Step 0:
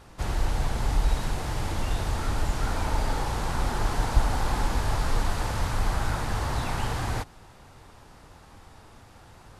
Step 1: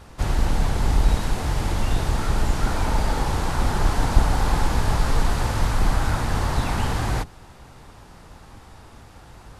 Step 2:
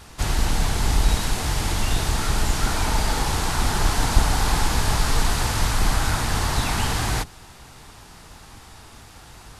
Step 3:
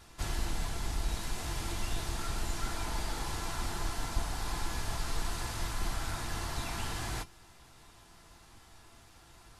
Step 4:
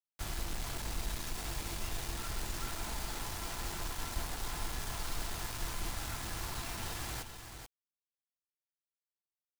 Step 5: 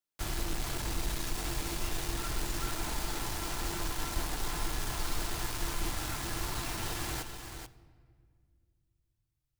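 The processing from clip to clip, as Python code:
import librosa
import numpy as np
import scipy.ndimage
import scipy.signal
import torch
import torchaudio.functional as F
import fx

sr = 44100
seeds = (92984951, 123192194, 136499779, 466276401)

y1 = fx.octave_divider(x, sr, octaves=1, level_db=-1.0)
y1 = y1 * librosa.db_to_amplitude(4.0)
y2 = fx.high_shelf(y1, sr, hz=2000.0, db=10.0)
y2 = fx.notch(y2, sr, hz=540.0, q=12.0)
y2 = y2 * librosa.db_to_amplitude(-1.0)
y3 = fx.rider(y2, sr, range_db=10, speed_s=0.5)
y3 = fx.comb_fb(y3, sr, f0_hz=340.0, decay_s=0.15, harmonics='all', damping=0.0, mix_pct=70)
y3 = y3 * librosa.db_to_amplitude(-6.0)
y4 = fx.quant_dither(y3, sr, seeds[0], bits=6, dither='none')
y4 = y4 + 10.0 ** (-8.0 / 20.0) * np.pad(y4, (int(434 * sr / 1000.0), 0))[:len(y4)]
y4 = y4 * librosa.db_to_amplitude(-5.5)
y5 = fx.peak_eq(y4, sr, hz=340.0, db=5.5, octaves=0.38)
y5 = fx.room_shoebox(y5, sr, seeds[1], volume_m3=4000.0, walls='mixed', distance_m=0.46)
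y5 = y5 * librosa.db_to_amplitude(3.5)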